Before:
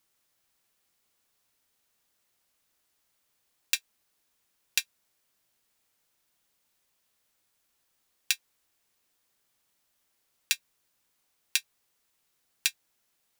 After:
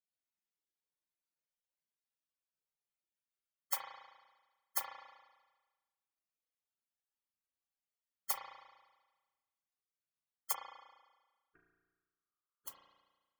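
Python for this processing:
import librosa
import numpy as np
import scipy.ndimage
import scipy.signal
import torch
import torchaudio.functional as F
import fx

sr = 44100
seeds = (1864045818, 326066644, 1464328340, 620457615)

y = fx.steep_lowpass(x, sr, hz=880.0, slope=48, at=(10.52, 12.68))
y = fx.spec_gate(y, sr, threshold_db=-25, keep='weak')
y = fx.rev_spring(y, sr, rt60_s=1.3, pass_ms=(34,), chirp_ms=45, drr_db=0.5)
y = F.gain(torch.from_numpy(y), 15.5).numpy()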